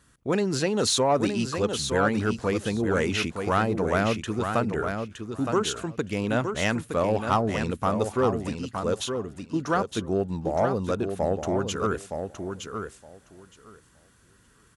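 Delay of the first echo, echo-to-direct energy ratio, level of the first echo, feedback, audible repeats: 0.916 s, -6.5 dB, -6.5 dB, 15%, 2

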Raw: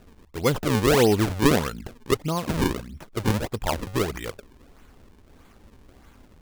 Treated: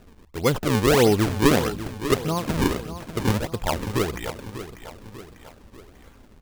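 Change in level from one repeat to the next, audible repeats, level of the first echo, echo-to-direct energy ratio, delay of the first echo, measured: -6.0 dB, 3, -12.0 dB, -11.0 dB, 0.594 s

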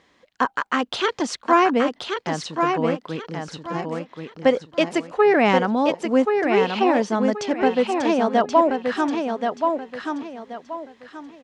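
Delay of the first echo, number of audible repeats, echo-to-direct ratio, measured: 1.079 s, 3, -4.5 dB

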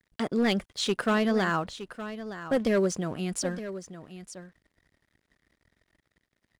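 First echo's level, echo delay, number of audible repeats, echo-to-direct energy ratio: -12.5 dB, 0.916 s, 1, -12.5 dB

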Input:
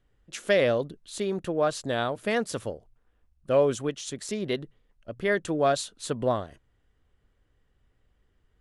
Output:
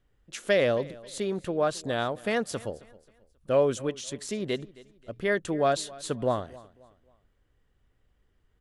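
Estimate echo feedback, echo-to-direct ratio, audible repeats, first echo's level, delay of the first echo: 36%, -20.5 dB, 2, -21.0 dB, 0.268 s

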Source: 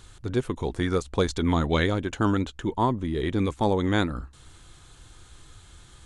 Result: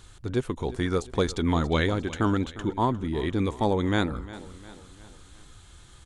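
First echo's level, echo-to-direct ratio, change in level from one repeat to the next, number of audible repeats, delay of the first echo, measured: -17.0 dB, -16.0 dB, -6.0 dB, 3, 0.354 s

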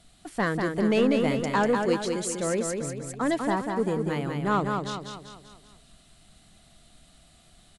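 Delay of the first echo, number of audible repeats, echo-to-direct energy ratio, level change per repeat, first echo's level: 0.194 s, 5, -3.5 dB, -6.5 dB, -4.5 dB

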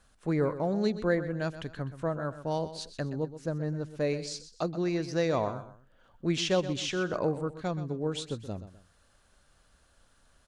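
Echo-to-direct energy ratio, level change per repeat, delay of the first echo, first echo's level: -12.5 dB, -9.5 dB, 0.126 s, -13.0 dB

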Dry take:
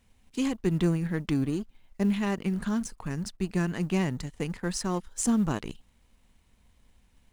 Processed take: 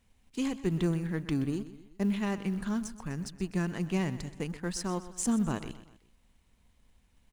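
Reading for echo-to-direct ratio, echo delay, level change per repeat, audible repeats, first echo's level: -14.0 dB, 0.126 s, -6.5 dB, 3, -15.0 dB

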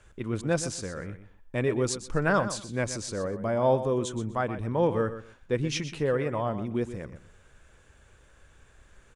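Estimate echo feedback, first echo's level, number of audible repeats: 19%, -12.0 dB, 2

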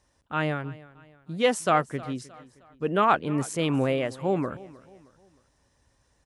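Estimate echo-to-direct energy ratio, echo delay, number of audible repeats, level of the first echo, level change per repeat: -19.0 dB, 0.311 s, 2, -20.0 dB, -7.5 dB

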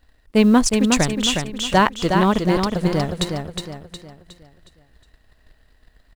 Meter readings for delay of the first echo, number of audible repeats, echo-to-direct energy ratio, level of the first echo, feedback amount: 0.363 s, 4, -4.0 dB, -5.0 dB, 41%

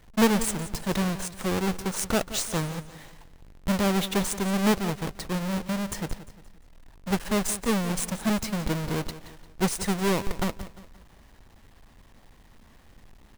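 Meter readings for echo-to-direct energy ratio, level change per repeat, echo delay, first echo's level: -14.0 dB, -8.0 dB, 0.175 s, -14.5 dB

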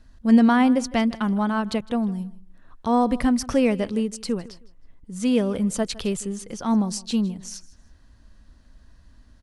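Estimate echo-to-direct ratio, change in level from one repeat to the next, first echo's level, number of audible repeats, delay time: -19.5 dB, -11.5 dB, -20.0 dB, 2, 0.158 s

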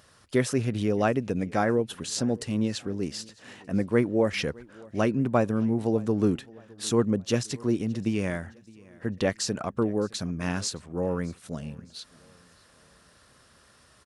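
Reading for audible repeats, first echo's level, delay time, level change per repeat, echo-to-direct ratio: 2, -24.0 dB, 0.614 s, -7.5 dB, -23.0 dB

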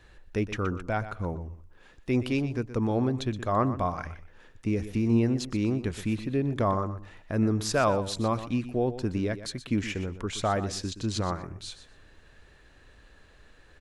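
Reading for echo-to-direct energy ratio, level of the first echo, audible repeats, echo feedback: -13.0 dB, -13.0 dB, 2, 19%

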